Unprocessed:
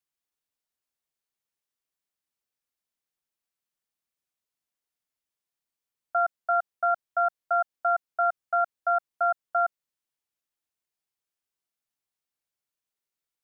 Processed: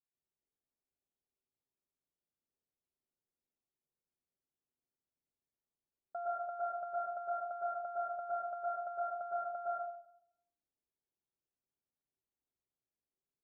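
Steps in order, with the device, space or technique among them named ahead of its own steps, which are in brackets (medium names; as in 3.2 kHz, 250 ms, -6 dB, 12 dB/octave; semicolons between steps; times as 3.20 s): television next door (compression 4:1, threshold -26 dBFS, peak gain reduction 5.5 dB; low-pass 580 Hz 12 dB/octave; reverberation RT60 0.65 s, pre-delay 105 ms, DRR -6 dB); trim -6 dB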